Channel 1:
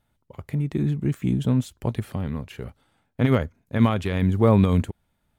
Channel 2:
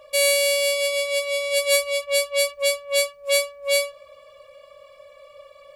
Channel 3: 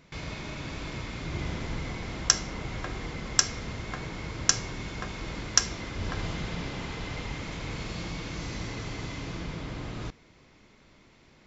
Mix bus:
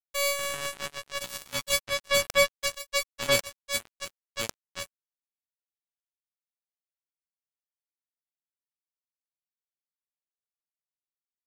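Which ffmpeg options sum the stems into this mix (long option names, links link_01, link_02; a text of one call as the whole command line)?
ffmpeg -i stem1.wav -i stem2.wav -i stem3.wav -filter_complex "[0:a]highpass=frequency=90:width=0.5412,highpass=frequency=90:width=1.3066,crystalizer=i=2.5:c=0,volume=-17dB,asplit=3[link_01][link_02][link_03];[link_02]volume=-17.5dB[link_04];[1:a]volume=-0.5dB,asplit=2[link_05][link_06];[link_06]volume=-3.5dB[link_07];[2:a]bandreject=frequency=73.82:width_type=h:width=4,bandreject=frequency=147.64:width_type=h:width=4,bandreject=frequency=221.46:width_type=h:width=4,bandreject=frequency=295.28:width_type=h:width=4,bandreject=frequency=369.1:width_type=h:width=4,bandreject=frequency=442.92:width_type=h:width=4,bandreject=frequency=516.74:width_type=h:width=4,volume=-8.5dB[link_08];[link_03]apad=whole_len=505389[link_09];[link_08][link_09]sidechaingate=range=-33dB:threshold=-59dB:ratio=16:detection=peak[link_10];[link_04][link_07]amix=inputs=2:normalize=0,aecho=0:1:1069|2138|3207:1|0.16|0.0256[link_11];[link_01][link_05][link_10][link_11]amix=inputs=4:normalize=0,aemphasis=mode=reproduction:type=50kf,acrusher=bits=2:mix=0:aa=0.5" out.wav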